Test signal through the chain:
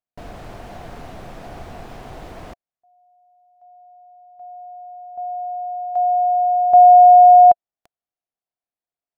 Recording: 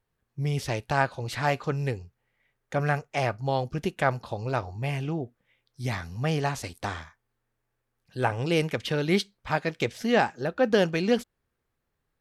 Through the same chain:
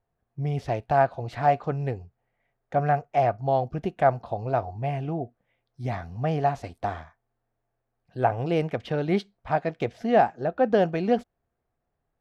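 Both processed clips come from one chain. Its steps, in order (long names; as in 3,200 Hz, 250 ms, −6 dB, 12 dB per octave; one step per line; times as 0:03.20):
low-pass filter 1,200 Hz 6 dB per octave
parametric band 700 Hz +11.5 dB 0.32 octaves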